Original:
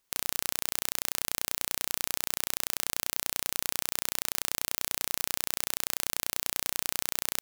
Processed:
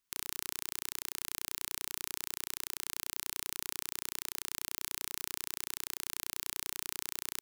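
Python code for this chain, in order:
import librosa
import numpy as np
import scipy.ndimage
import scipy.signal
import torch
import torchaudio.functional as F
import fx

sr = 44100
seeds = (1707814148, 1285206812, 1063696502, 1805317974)

y = fx.band_shelf(x, sr, hz=600.0, db=-8.0, octaves=1.2)
y = y * librosa.db_to_amplitude(-7.0)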